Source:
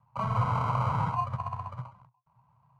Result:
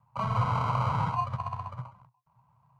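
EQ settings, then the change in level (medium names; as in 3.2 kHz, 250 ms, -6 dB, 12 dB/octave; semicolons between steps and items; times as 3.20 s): dynamic bell 4 kHz, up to +5 dB, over -51 dBFS, Q 0.99; 0.0 dB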